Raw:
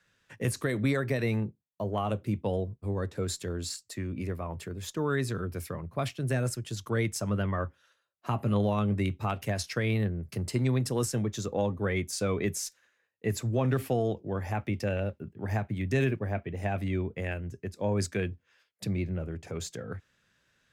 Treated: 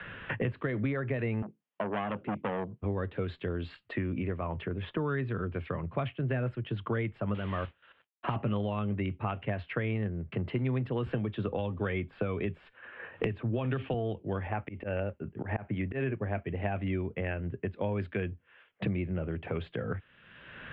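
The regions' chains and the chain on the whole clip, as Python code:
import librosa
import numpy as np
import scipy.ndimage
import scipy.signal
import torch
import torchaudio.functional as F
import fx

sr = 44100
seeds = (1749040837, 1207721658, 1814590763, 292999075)

y = fx.chain(x, sr, fx.highpass(hz=180.0, slope=24),
    fx.transformer_sat(knee_hz=1500.0), at=(1.42, 2.81))
y = fx.chain(y, sr, fx.cvsd(bps=64000),
    fx.level_steps(step_db=11),
    fx.mod_noise(seeds[0], snr_db=10), at=(7.34, 8.36))
y = fx.chain(y, sr, fx.notch(hz=2000.0, q=13.0),
    fx.band_squash(depth_pct=100), at=(11.06, 13.94))
y = fx.chain(y, sr, fx.bass_treble(bass_db=-4, treble_db=-15),
    fx.auto_swell(attack_ms=164.0), at=(14.47, 16.19))
y = scipy.signal.sosfilt(scipy.signal.ellip(4, 1.0, 50, 3100.0, 'lowpass', fs=sr, output='sos'), y)
y = fx.band_squash(y, sr, depth_pct=100)
y = F.gain(torch.from_numpy(y), -2.0).numpy()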